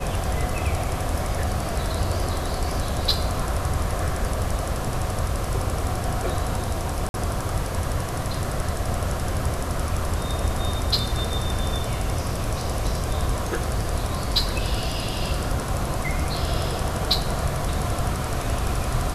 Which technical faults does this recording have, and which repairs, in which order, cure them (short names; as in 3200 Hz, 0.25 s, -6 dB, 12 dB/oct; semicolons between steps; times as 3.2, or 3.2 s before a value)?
7.09–7.14 gap 51 ms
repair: interpolate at 7.09, 51 ms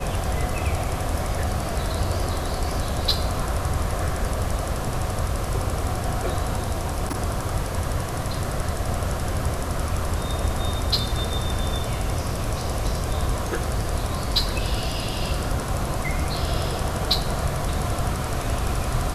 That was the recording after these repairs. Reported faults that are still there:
none